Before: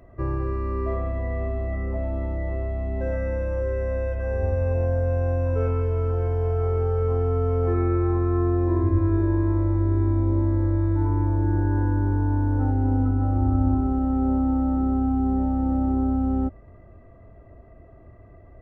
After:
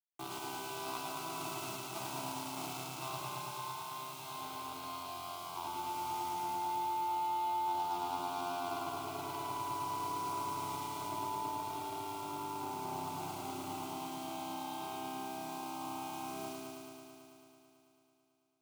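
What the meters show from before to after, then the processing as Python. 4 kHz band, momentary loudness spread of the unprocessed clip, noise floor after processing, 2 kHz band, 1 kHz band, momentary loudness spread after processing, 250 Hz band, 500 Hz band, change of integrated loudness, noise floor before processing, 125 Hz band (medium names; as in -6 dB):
no reading, 6 LU, -68 dBFS, -7.0 dB, -1.5 dB, 8 LU, -22.5 dB, -19.0 dB, -15.5 dB, -48 dBFS, -31.0 dB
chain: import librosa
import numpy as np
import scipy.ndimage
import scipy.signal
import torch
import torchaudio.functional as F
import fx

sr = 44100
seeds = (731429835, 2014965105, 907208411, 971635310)

y = fx.lower_of_two(x, sr, delay_ms=1.1)
y = scipy.signal.sosfilt(scipy.signal.ellip(4, 1.0, 40, 1600.0, 'lowpass', fs=sr, output='sos'), y)
y = np.diff(y, prepend=0.0)
y = fx.cheby_harmonics(y, sr, harmonics=(2, 4, 7, 8), levels_db=(-8, -28, -18, -17), full_scale_db=-38.0)
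y = fx.echo_feedback(y, sr, ms=102, feedback_pct=40, wet_db=-5.0)
y = fx.quant_dither(y, sr, seeds[0], bits=10, dither='none')
y = scipy.signal.sosfilt(scipy.signal.butter(2, 98.0, 'highpass', fs=sr, output='sos'), y)
y = fx.peak_eq(y, sr, hz=270.0, db=5.5, octaves=0.34)
y = fx.fixed_phaser(y, sr, hz=350.0, stages=8)
y = fx.rider(y, sr, range_db=10, speed_s=0.5)
y = fx.notch(y, sr, hz=450.0, q=12.0)
y = fx.echo_heads(y, sr, ms=110, heads='first and second', feedback_pct=70, wet_db=-7.0)
y = F.gain(torch.from_numpy(y), 11.0).numpy()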